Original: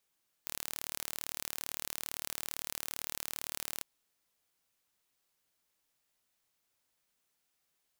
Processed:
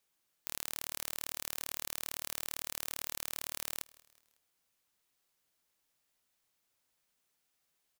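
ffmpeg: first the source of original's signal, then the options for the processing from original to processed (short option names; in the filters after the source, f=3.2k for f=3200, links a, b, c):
-f lavfi -i "aevalsrc='0.299*eq(mod(n,1170),0)':d=3.36:s=44100"
-af "aecho=1:1:184|368|552:0.0708|0.0333|0.0156"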